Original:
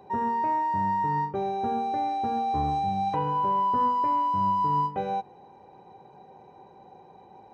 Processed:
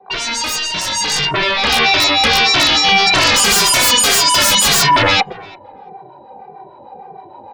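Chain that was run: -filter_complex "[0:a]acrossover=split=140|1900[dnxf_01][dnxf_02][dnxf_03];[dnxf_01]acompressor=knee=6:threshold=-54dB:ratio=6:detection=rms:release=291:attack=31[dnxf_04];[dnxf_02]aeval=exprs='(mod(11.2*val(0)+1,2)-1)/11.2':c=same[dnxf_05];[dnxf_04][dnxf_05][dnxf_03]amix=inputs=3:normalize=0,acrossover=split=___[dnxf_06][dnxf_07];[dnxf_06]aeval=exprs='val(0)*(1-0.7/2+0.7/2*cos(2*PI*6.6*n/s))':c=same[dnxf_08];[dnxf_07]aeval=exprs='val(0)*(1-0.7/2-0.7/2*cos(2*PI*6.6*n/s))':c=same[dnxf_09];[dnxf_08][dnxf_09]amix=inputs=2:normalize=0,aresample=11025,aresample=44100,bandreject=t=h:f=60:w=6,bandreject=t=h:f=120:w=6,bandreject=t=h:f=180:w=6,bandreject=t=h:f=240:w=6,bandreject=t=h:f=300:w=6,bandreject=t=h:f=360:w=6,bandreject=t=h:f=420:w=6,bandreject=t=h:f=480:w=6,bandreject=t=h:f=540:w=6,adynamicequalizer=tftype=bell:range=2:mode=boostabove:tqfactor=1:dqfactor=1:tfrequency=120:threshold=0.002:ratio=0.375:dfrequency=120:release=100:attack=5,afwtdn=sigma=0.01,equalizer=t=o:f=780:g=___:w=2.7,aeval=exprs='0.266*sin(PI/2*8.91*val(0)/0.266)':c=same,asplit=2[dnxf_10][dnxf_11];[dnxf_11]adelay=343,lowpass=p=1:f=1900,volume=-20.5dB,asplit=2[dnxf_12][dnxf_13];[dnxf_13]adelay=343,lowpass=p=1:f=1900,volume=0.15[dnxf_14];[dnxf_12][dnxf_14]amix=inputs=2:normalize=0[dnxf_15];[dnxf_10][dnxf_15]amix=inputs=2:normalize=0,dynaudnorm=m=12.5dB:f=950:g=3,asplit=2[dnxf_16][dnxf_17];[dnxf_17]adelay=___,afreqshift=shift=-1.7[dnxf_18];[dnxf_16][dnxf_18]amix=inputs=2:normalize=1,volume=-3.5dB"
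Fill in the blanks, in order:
670, 9, 2.1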